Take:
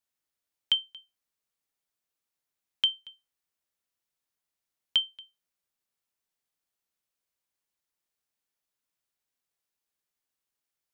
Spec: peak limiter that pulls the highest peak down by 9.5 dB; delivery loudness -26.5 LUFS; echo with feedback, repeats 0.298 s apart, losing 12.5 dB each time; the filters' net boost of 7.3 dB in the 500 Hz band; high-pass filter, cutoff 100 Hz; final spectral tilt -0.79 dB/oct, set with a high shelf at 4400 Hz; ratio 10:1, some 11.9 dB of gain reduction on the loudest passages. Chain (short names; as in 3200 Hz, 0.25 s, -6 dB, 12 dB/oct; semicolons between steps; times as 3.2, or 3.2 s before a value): HPF 100 Hz; bell 500 Hz +9 dB; high shelf 4400 Hz +4.5 dB; compressor 10:1, threshold -30 dBFS; limiter -21.5 dBFS; feedback echo 0.298 s, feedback 24%, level -12.5 dB; gain +17.5 dB